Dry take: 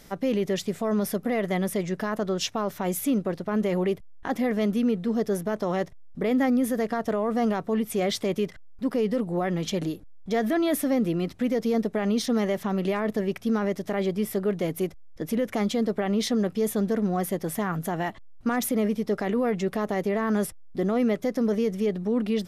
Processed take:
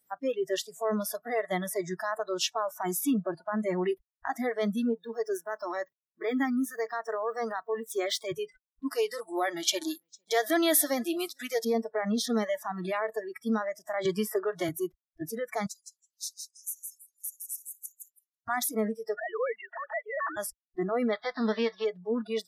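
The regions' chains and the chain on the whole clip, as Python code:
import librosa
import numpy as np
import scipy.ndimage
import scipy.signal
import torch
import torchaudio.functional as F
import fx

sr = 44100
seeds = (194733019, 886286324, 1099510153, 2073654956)

y = fx.chain(x, sr, fx.median_filter(points=3),
    fx.highpass(hz=210.0, slope=12),
    fx.peak_eq(hz=700.0, db=-6.0, octaves=0.52), at=(4.93, 8.32))
y = fx.chain(y, sr, fx.highpass(hz=250.0, slope=12),
    fx.high_shelf(hz=2500.0, db=10.0),
    fx.echo_single(ms=455, db=-22.5), at=(8.9, 11.65))
y = fx.chain(y, sr, fx.highpass(hz=61.0, slope=12),
    fx.peak_eq(hz=1200.0, db=4.5, octaves=1.4),
    fx.band_squash(depth_pct=100), at=(14.05, 14.69))
y = fx.chain(y, sr, fx.cheby2_highpass(hz=1000.0, order=4, stop_db=80),
    fx.echo_feedback(ms=164, feedback_pct=25, wet_db=-5), at=(15.66, 18.48))
y = fx.chain(y, sr, fx.sine_speech(),
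    fx.highpass(hz=620.0, slope=12),
    fx.quant_float(bits=8), at=(19.17, 20.37))
y = fx.envelope_flatten(y, sr, power=0.6, at=(21.11, 21.84), fade=0.02)
y = fx.cheby2_lowpass(y, sr, hz=10000.0, order=4, stop_db=50, at=(21.11, 21.84), fade=0.02)
y = fx.noise_reduce_blind(y, sr, reduce_db=29)
y = fx.highpass(y, sr, hz=190.0, slope=6)
y = fx.notch(y, sr, hz=2100.0, q=24.0)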